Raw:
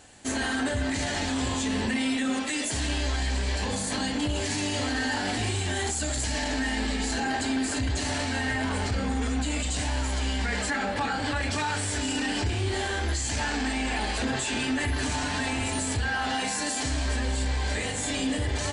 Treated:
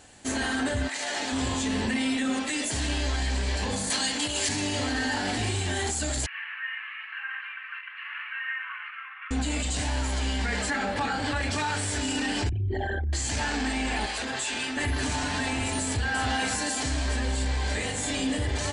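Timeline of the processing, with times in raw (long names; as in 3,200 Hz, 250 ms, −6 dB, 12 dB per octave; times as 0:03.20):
0:00.87–0:01.31: high-pass filter 910 Hz → 260 Hz
0:03.90–0:04.49: spectral tilt +3 dB per octave
0:06.26–0:09.31: Chebyshev band-pass filter 1,100–2,800 Hz, order 4
0:12.49–0:13.13: spectral envelope exaggerated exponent 3
0:14.06–0:14.77: low-shelf EQ 380 Hz −12 dB
0:15.86–0:16.27: delay throw 280 ms, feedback 35%, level −5 dB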